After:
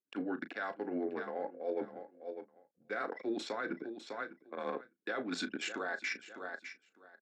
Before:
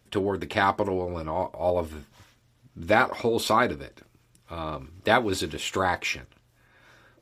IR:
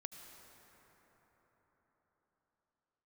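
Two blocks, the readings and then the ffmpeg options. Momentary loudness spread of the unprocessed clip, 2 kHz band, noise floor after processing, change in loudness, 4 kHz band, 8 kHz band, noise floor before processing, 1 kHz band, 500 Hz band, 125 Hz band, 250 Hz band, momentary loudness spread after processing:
15 LU, -11.0 dB, -81 dBFS, -13.5 dB, -13.0 dB, -13.5 dB, -64 dBFS, -16.5 dB, -12.5 dB, -23.5 dB, -8.5 dB, 9 LU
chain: -filter_complex "[0:a]afreqshift=-110,anlmdn=15.8,tremolo=f=9.4:d=0.4,aecho=1:1:603|1206:0.0794|0.0127,areverse,acompressor=threshold=-34dB:ratio=20,areverse,highpass=f=250:w=0.5412,highpass=f=250:w=1.3066,equalizer=f=960:t=q:w=4:g=-9,equalizer=f=1.6k:t=q:w=4:g=10,equalizer=f=3.1k:t=q:w=4:g=-8,lowpass=f=6.6k:w=0.5412,lowpass=f=6.6k:w=1.3066,alimiter=level_in=8dB:limit=-24dB:level=0:latency=1:release=56,volume=-8dB,asplit=2[a][b];[b]adelay=35,volume=-13dB[c];[a][c]amix=inputs=2:normalize=0,volume=4.5dB"

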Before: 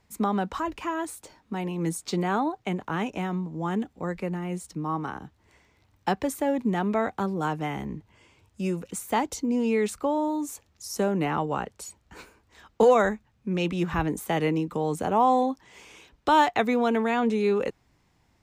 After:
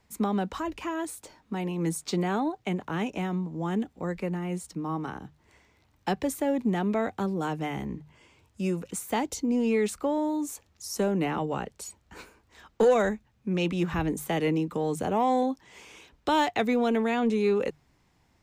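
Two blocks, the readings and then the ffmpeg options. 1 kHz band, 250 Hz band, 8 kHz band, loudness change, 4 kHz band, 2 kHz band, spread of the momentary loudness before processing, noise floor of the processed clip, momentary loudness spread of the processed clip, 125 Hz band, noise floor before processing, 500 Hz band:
-4.5 dB, -0.5 dB, 0.0 dB, -2.0 dB, -0.5 dB, -2.5 dB, 12 LU, -67 dBFS, 12 LU, -0.5 dB, -67 dBFS, -1.5 dB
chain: -filter_complex "[0:a]bandreject=f=50:t=h:w=6,bandreject=f=100:t=h:w=6,bandreject=f=150:t=h:w=6,acrossover=split=860|1500[a][b][c];[b]acompressor=threshold=-48dB:ratio=6[d];[a][d][c]amix=inputs=3:normalize=0,asoftclip=type=tanh:threshold=-12.5dB"

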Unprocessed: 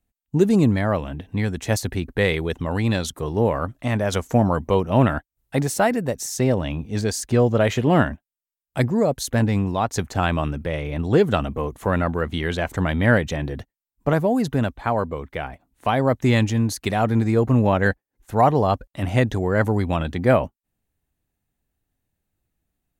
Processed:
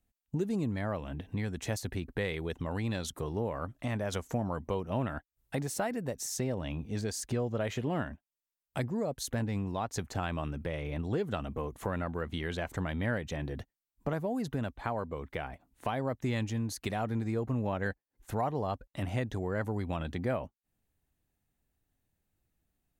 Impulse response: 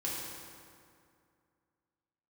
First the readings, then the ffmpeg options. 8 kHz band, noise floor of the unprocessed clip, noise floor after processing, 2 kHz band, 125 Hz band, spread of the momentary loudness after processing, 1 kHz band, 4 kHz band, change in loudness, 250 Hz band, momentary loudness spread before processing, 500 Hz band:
-9.5 dB, under -85 dBFS, under -85 dBFS, -13.5 dB, -13.0 dB, 6 LU, -14.0 dB, -11.5 dB, -13.5 dB, -13.5 dB, 9 LU, -14.0 dB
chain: -af "acompressor=threshold=-33dB:ratio=2.5,volume=-2.5dB"

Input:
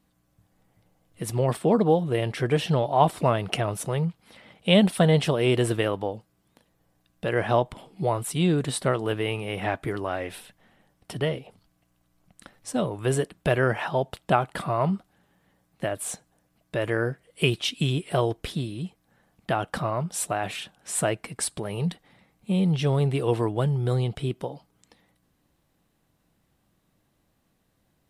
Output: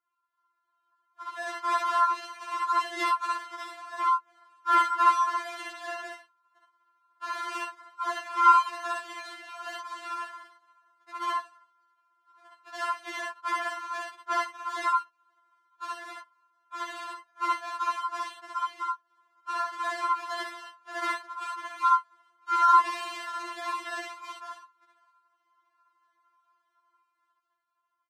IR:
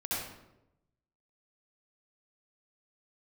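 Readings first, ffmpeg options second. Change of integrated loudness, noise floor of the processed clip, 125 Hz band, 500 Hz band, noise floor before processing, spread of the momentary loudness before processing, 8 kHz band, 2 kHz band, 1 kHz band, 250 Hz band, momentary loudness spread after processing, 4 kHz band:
-3.0 dB, -77 dBFS, under -40 dB, -18.0 dB, -70 dBFS, 12 LU, -12.0 dB, -2.0 dB, +5.0 dB, -22.0 dB, 19 LU, -8.0 dB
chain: -filter_complex "[0:a]equalizer=f=480:t=o:w=0.62:g=-7.5,bandreject=f=2.3k:w=6.6,aecho=1:1:7.3:0.35,acrusher=samples=38:mix=1:aa=0.000001:lfo=1:lforange=22.8:lforate=1.6,aeval=exprs='val(0)*sin(2*PI*1200*n/s)':c=same,dynaudnorm=f=280:g=9:m=11.5dB,highpass=280,lowpass=7.4k[a];[1:a]atrim=start_sample=2205,atrim=end_sample=3087[b];[a][b]afir=irnorm=-1:irlink=0,afftfilt=real='re*4*eq(mod(b,16),0)':imag='im*4*eq(mod(b,16),0)':win_size=2048:overlap=0.75,volume=-8dB"

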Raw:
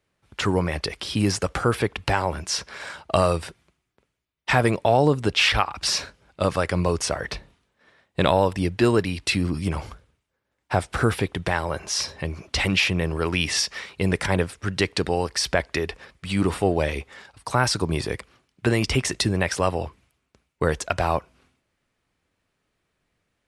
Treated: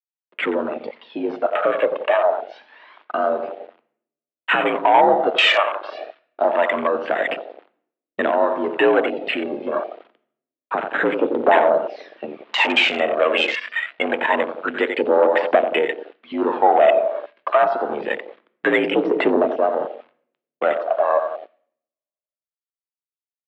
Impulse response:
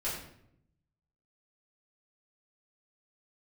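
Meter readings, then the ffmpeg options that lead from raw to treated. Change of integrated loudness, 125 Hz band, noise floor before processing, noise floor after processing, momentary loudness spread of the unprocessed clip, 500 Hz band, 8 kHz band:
+4.5 dB, under -20 dB, -77 dBFS, under -85 dBFS, 12 LU, +7.0 dB, under -20 dB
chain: -filter_complex "[0:a]alimiter=limit=-9dB:level=0:latency=1:release=447,asplit=2[a][b];[b]adelay=89,lowpass=f=2.4k:p=1,volume=-9.5dB,asplit=2[c][d];[d]adelay=89,lowpass=f=2.4k:p=1,volume=0.54,asplit=2[e][f];[f]adelay=89,lowpass=f=2.4k:p=1,volume=0.54,asplit=2[g][h];[h]adelay=89,lowpass=f=2.4k:p=1,volume=0.54,asplit=2[i][j];[j]adelay=89,lowpass=f=2.4k:p=1,volume=0.54,asplit=2[k][l];[l]adelay=89,lowpass=f=2.4k:p=1,volume=0.54[m];[a][c][e][g][i][k][m]amix=inputs=7:normalize=0,dynaudnorm=f=370:g=21:m=3.5dB,acrusher=bits=5:mode=log:mix=0:aa=0.000001,aphaser=in_gain=1:out_gain=1:delay=2:decay=0.64:speed=0.26:type=triangular,adynamicequalizer=threshold=0.0224:dfrequency=570:dqfactor=1.8:tfrequency=570:tqfactor=1.8:attack=5:release=100:ratio=0.375:range=3:mode=boostabove:tftype=bell,acrusher=bits=5:mix=0:aa=0.000001,asoftclip=type=tanh:threshold=-10.5dB,highpass=f=230:t=q:w=0.5412,highpass=f=230:t=q:w=1.307,lowpass=f=3.4k:t=q:w=0.5176,lowpass=f=3.4k:t=q:w=0.7071,lowpass=f=3.4k:t=q:w=1.932,afreqshift=60,asplit=2[n][o];[o]equalizer=f=430:w=4.6:g=4[p];[1:a]atrim=start_sample=2205[q];[p][q]afir=irnorm=-1:irlink=0,volume=-15dB[r];[n][r]amix=inputs=2:normalize=0,afwtdn=0.0501,volume=3dB"

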